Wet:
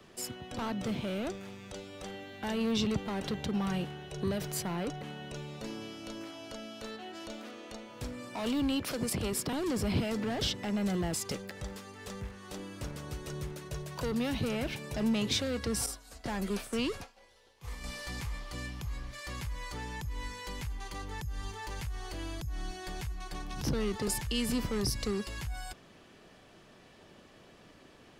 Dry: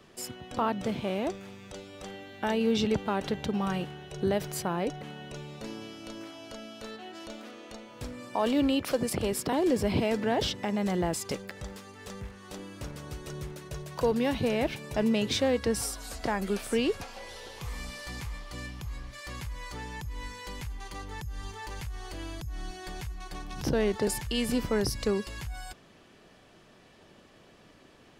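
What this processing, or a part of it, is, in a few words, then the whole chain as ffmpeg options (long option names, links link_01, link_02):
one-band saturation: -filter_complex "[0:a]asettb=1/sr,asplit=3[link_01][link_02][link_03];[link_01]atrim=end=15.864[link_04];[link_02]atrim=start=15.86:end=17.84,asetpts=PTS-STARTPTS,afade=type=in:duration=0.004:curve=qsin,afade=type=out:start_time=1.976:duration=0.004:curve=qsin,agate=range=-33dB:threshold=-31dB:ratio=3:detection=peak[link_05];[link_03]atrim=start=17.836[link_06];[link_04][link_05]acrossfade=duration=0.004:curve1=hsin:curve2=qsin[link_07];[link_07][link_06]acrossfade=duration=0.004:curve1=qsin:curve2=hsin,acrossover=split=230|2900[link_08][link_09][link_10];[link_09]asoftclip=type=tanh:threshold=-34.5dB[link_11];[link_08][link_11][link_10]amix=inputs=3:normalize=0"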